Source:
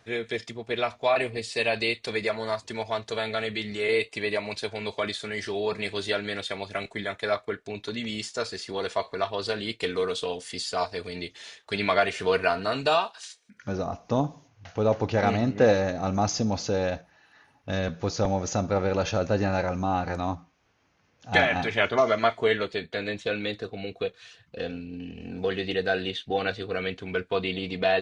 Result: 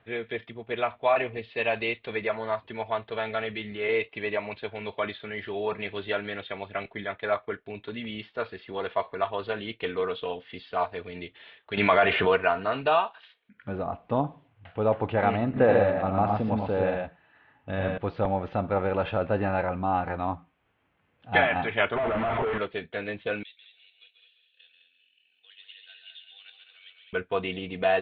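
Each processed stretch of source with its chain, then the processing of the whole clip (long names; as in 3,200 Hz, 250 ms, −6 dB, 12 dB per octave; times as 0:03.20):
0:11.77–0:12.36: low-pass filter 7,800 Hz + envelope flattener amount 70%
0:15.45–0:17.98: high-shelf EQ 5,500 Hz −10 dB + multi-tap delay 85/113 ms −6.5/−3.5 dB
0:21.96–0:22.58: sign of each sample alone + head-to-tape spacing loss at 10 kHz 38 dB
0:23.43–0:27.13: four-pole ladder band-pass 4,100 Hz, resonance 50% + echo machine with several playback heads 69 ms, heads second and third, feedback 42%, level −7 dB
whole clip: Butterworth low-pass 3,400 Hz 48 dB per octave; dynamic equaliser 970 Hz, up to +5 dB, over −35 dBFS, Q 0.91; level −3 dB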